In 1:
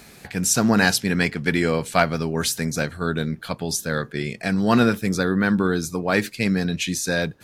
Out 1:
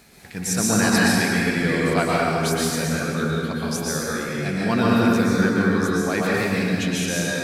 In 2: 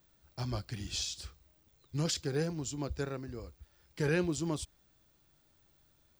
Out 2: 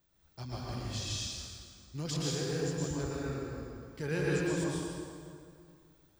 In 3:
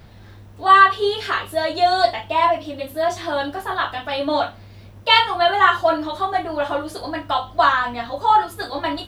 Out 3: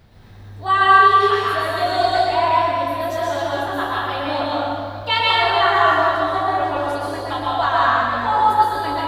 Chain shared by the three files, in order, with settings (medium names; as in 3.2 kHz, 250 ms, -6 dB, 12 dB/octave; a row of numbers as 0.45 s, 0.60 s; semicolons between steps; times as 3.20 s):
plate-style reverb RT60 2.3 s, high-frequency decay 0.7×, pre-delay 105 ms, DRR -6 dB; trim -6 dB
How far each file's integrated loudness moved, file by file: +1.0 LU, 0.0 LU, +1.5 LU